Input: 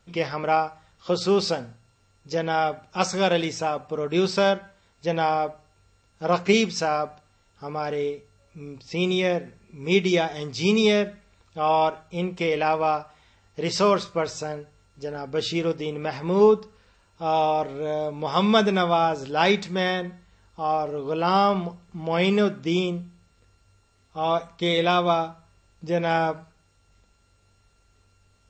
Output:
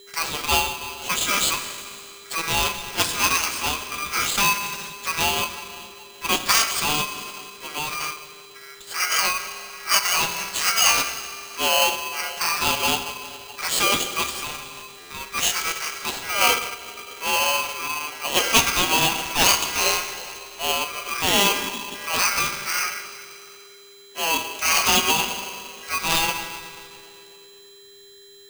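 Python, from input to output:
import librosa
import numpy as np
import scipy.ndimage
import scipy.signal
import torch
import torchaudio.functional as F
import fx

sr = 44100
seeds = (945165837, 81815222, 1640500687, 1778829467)

y = fx.graphic_eq_15(x, sr, hz=(250, 1600, 4000), db=(-12, 3, 10))
y = fx.rev_schroeder(y, sr, rt60_s=2.5, comb_ms=38, drr_db=7.5)
y = fx.formant_shift(y, sr, semitones=4)
y = scipy.signal.sosfilt(scipy.signal.butter(2, 6200.0, 'lowpass', fs=sr, output='sos'), y)
y = fx.tilt_shelf(y, sr, db=-3.0, hz=970.0)
y = y + 10.0 ** (-45.0 / 20.0) * np.sin(2.0 * np.pi * 2200.0 * np.arange(len(y)) / sr)
y = fx.buffer_glitch(y, sr, at_s=(15.0,), block=512, repeats=8)
y = y * np.sign(np.sin(2.0 * np.pi * 1800.0 * np.arange(len(y)) / sr))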